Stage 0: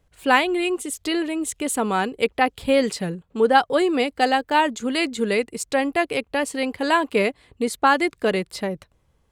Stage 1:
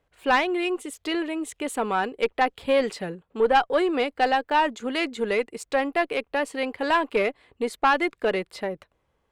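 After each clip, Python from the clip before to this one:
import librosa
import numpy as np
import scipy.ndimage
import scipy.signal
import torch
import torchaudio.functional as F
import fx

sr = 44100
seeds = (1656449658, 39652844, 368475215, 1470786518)

y = fx.bass_treble(x, sr, bass_db=-10, treble_db=-10)
y = fx.tube_stage(y, sr, drive_db=10.0, bias=0.3)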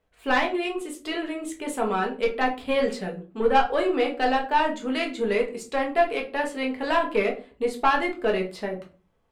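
y = fx.room_shoebox(x, sr, seeds[0], volume_m3=190.0, walls='furnished', distance_m=1.5)
y = y * librosa.db_to_amplitude(-3.5)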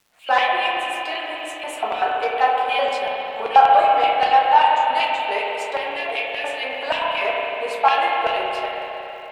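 y = fx.filter_lfo_highpass(x, sr, shape='square', hz=5.2, low_hz=720.0, high_hz=2700.0, q=3.2)
y = fx.dmg_crackle(y, sr, seeds[1], per_s=370.0, level_db=-48.0)
y = fx.rev_spring(y, sr, rt60_s=3.5, pass_ms=(32, 46), chirp_ms=55, drr_db=-2.0)
y = y * librosa.db_to_amplitude(-1.0)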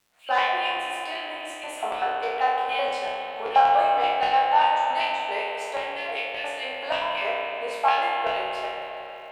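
y = fx.spec_trails(x, sr, decay_s=0.72)
y = y * librosa.db_to_amplitude(-7.0)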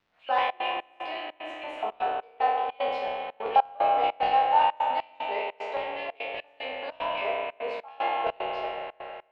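y = fx.dynamic_eq(x, sr, hz=1600.0, q=2.3, threshold_db=-41.0, ratio=4.0, max_db=-6)
y = fx.step_gate(y, sr, bpm=150, pattern='xxxxx.xx..xxx.', floor_db=-24.0, edge_ms=4.5)
y = fx.air_absorb(y, sr, metres=250.0)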